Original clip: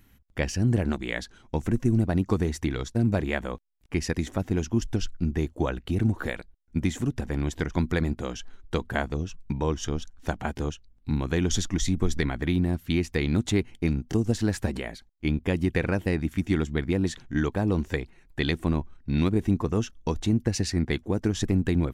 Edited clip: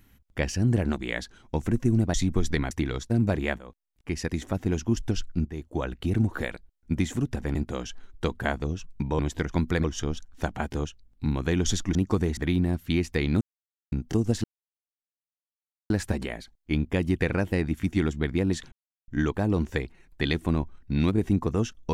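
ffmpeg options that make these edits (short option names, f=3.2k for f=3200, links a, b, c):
-filter_complex "[0:a]asplit=14[a][b][c][d][e][f][g][h][i][j][k][l][m][n];[a]atrim=end=2.142[o];[b]atrim=start=11.798:end=12.372[p];[c]atrim=start=2.558:end=3.43,asetpts=PTS-STARTPTS,afade=t=out:st=0.868:d=0.004:c=hsin:silence=0.188365[q];[d]atrim=start=3.43:end=5.3,asetpts=PTS-STARTPTS,afade=t=in:d=1.3:c=qsin:silence=0.188365,afade=t=out:st=1.866:d=0.004:c=hsin:silence=0.188365[r];[e]atrim=start=5.3:end=7.402,asetpts=PTS-STARTPTS,afade=t=in:d=0.52:silence=0.188365[s];[f]atrim=start=8.048:end=9.692[t];[g]atrim=start=7.398:end=8.052[u];[h]atrim=start=9.688:end=11.802[v];[i]atrim=start=2.138:end=2.562[w];[j]atrim=start=12.368:end=13.41,asetpts=PTS-STARTPTS,afade=t=out:st=1.038:d=0.004:c=hsin[x];[k]atrim=start=13.41:end=13.92,asetpts=PTS-STARTPTS,volume=0[y];[l]atrim=start=13.92:end=14.44,asetpts=PTS-STARTPTS,afade=t=in:d=0.004:c=hsin,afade=t=out:st=0.516:d=0.004:c=hsin,apad=pad_dur=1.46[z];[m]atrim=start=14.44:end=17.26,asetpts=PTS-STARTPTS,afade=t=in:d=0.004:c=hsin,afade=t=out:st=2.816:d=0.004:c=hsin,apad=pad_dur=0.36[aa];[n]atrim=start=17.26,asetpts=PTS-STARTPTS,afade=t=in:d=0.004:c=hsin[ab];[o][p]acrossfade=d=0.004:c1=hsin:c2=hsin[ac];[q][r][s]concat=n=3:v=0:a=1[ad];[ac][ad]acrossfade=d=0.004:c1=hsin:c2=hsin[ae];[ae][t]acrossfade=d=0.004:c1=hsin:c2=hsin[af];[af][u]acrossfade=d=0.004:c1=hsin:c2=hsin[ag];[ag][v]acrossfade=d=0.004:c1=hsin:c2=hsin[ah];[ah][w]acrossfade=d=0.004:c1=hsin:c2=hsin[ai];[x][y][z][aa][ab]concat=n=5:v=0:a=1[aj];[ai][aj]acrossfade=d=0.004:c1=hsin:c2=hsin"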